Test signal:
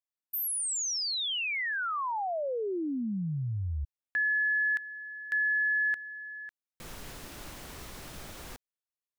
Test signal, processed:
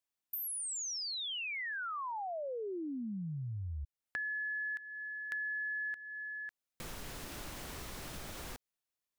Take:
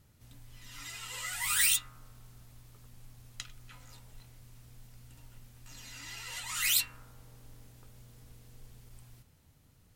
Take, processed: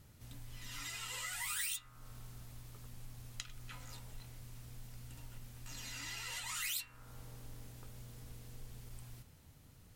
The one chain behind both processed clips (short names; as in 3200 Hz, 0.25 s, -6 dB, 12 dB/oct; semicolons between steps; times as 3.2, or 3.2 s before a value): compressor 3:1, threshold -45 dBFS; gain +3 dB